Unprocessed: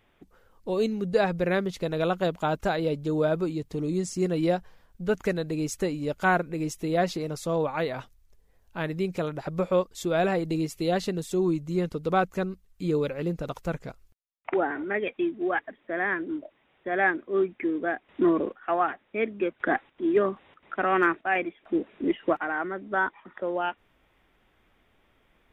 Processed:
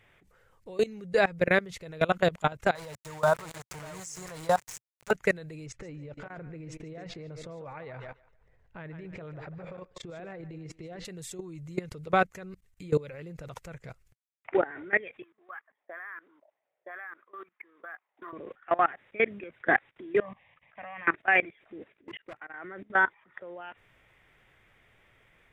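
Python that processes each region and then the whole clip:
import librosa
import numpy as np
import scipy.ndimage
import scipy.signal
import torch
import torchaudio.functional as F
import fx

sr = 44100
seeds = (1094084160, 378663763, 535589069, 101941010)

y = fx.chain(x, sr, fx.reverse_delay(ms=416, wet_db=-11.5),
    fx.curve_eq(hz=(100.0, 230.0, 380.0, 980.0, 1400.0, 2300.0, 6200.0, 11000.0), db=(0, -11, -13, 14, 5, -13, 11, 5)),
    fx.sample_gate(floor_db=-35.5), at=(2.75, 5.11))
y = fx.chain(y, sr, fx.over_compress(threshold_db=-29.0, ratio=-0.5),
    fx.spacing_loss(db_at_10k=27),
    fx.echo_thinned(ms=145, feedback_pct=26, hz=350.0, wet_db=-11.0), at=(5.66, 11.05))
y = fx.chain(y, sr, fx.peak_eq(hz=4800.0, db=14.5, octaves=1.2),
    fx.auto_wah(base_hz=580.0, top_hz=1200.0, q=4.6, full_db=-25.0, direction='up'),
    fx.resample_linear(factor=3), at=(15.22, 18.33))
y = fx.chain(y, sr, fx.ellip_lowpass(hz=4300.0, order=4, stop_db=40),
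    fx.fixed_phaser(hz=1400.0, stages=6), at=(20.2, 21.08))
y = fx.chain(y, sr, fx.level_steps(step_db=23),
    fx.clip_hard(threshold_db=-25.0), at=(21.92, 22.54))
y = fx.graphic_eq(y, sr, hz=(125, 250, 500, 2000, 8000), db=(10, -5, 4, 10, 7))
y = fx.level_steps(y, sr, step_db=21)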